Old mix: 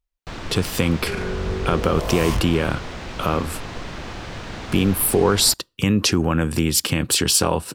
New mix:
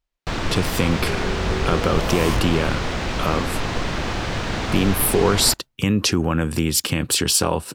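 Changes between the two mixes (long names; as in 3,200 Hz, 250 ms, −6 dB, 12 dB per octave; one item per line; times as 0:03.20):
speech: send off
first sound +8.0 dB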